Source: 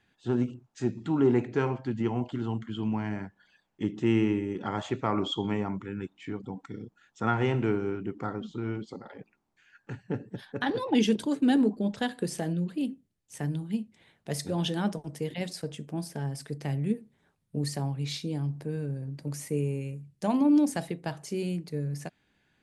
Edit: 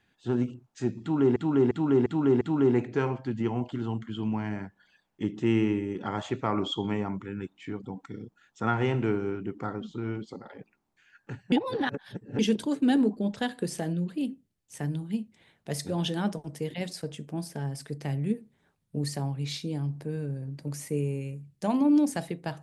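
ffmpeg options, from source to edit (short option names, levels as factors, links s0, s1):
-filter_complex "[0:a]asplit=7[s0][s1][s2][s3][s4][s5][s6];[s0]atrim=end=1.362[s7];[s1]atrim=start=1.008:end=1.362[s8];[s2]atrim=start=1.008:end=1.362[s9];[s3]atrim=start=1.008:end=1.362[s10];[s4]atrim=start=1.008:end=10.122[s11];[s5]atrim=start=10.118:end=10.992,asetpts=PTS-STARTPTS,areverse[s12];[s6]atrim=start=10.988[s13];[s7][s8]acrossfade=d=0.004:c1=hsin:c2=hsin[s14];[s14][s9]acrossfade=d=0.004:c1=hsin:c2=hsin[s15];[s15][s10]acrossfade=d=0.004:c1=hsin:c2=hsin[s16];[s16][s11]acrossfade=d=0.004:c1=hsin:c2=hsin[s17];[s17][s12]acrossfade=d=0.004:c1=hsin:c2=hsin[s18];[s18][s13]acrossfade=d=0.004:c1=hsin:c2=hsin"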